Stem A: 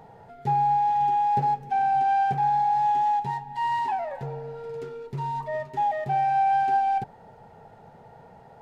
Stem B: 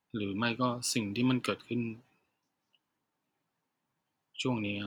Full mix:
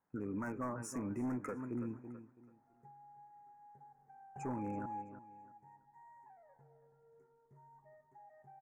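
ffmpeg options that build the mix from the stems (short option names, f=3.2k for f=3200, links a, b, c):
-filter_complex "[0:a]acompressor=threshold=-25dB:ratio=6,adelay=2050,volume=-16dB,asplit=2[a][b];[b]volume=-15.5dB[c];[1:a]lowpass=f=1.5k:p=1,lowshelf=f=410:g=-4.5,volume=2.5dB,asplit=3[d][e][f];[e]volume=-15.5dB[g];[f]apad=whole_len=470220[h];[a][h]sidechaingate=range=-33dB:threshold=-60dB:ratio=16:detection=peak[i];[c][g]amix=inputs=2:normalize=0,aecho=0:1:330|660|990|1320:1|0.24|0.0576|0.0138[j];[i][d][j]amix=inputs=3:normalize=0,asoftclip=type=hard:threshold=-27.5dB,asuperstop=centerf=3600:order=8:qfactor=0.83,alimiter=level_in=9dB:limit=-24dB:level=0:latency=1:release=58,volume=-9dB"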